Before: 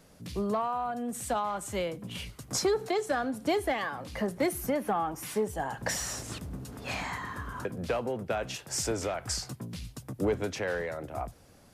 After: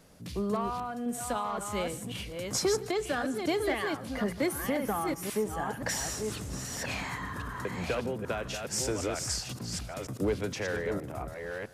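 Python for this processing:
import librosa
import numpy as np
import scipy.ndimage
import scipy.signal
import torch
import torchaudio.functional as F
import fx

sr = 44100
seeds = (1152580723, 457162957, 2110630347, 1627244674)

y = fx.reverse_delay(x, sr, ms=530, wet_db=-5)
y = fx.dynamic_eq(y, sr, hz=740.0, q=1.5, threshold_db=-41.0, ratio=4.0, max_db=-5)
y = y + 10.0 ** (-20.5 / 20.0) * np.pad(y, (int(152 * sr / 1000.0), 0))[:len(y)]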